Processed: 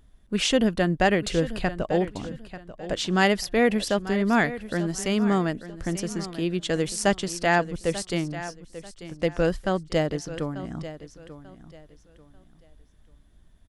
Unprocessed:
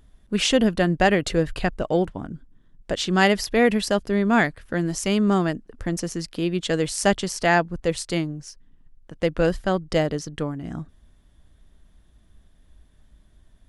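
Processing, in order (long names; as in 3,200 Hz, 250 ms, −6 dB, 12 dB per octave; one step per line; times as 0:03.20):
repeating echo 890 ms, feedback 27%, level −14 dB
level −2.5 dB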